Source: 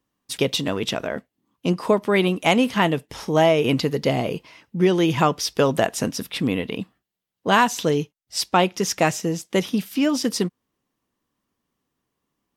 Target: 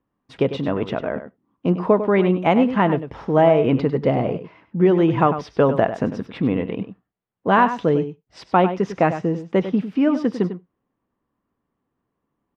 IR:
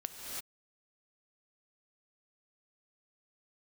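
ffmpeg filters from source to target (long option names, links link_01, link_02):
-filter_complex "[0:a]lowpass=1500,asplit=2[link_01][link_02];[link_02]adelay=99.13,volume=-11dB,highshelf=frequency=4000:gain=-2.23[link_03];[link_01][link_03]amix=inputs=2:normalize=0,asplit=2[link_04][link_05];[1:a]atrim=start_sample=2205,atrim=end_sample=3969[link_06];[link_05][link_06]afir=irnorm=-1:irlink=0,volume=-7.5dB[link_07];[link_04][link_07]amix=inputs=2:normalize=0"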